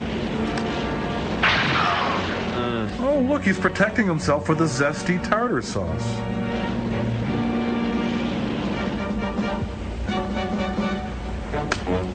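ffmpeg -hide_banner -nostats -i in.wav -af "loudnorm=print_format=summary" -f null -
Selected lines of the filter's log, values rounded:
Input Integrated:    -23.9 LUFS
Input True Peak:      -6.3 dBTP
Input LRA:             4.7 LU
Input Threshold:     -33.9 LUFS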